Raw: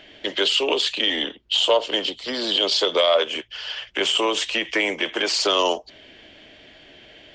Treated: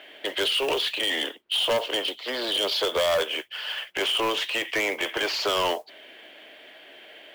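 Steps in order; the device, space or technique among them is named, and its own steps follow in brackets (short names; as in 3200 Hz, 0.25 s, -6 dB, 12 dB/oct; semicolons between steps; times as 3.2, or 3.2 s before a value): carbon microphone (BPF 460–3100 Hz; soft clip -22 dBFS, distortion -9 dB; modulation noise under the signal 22 dB); gain +2.5 dB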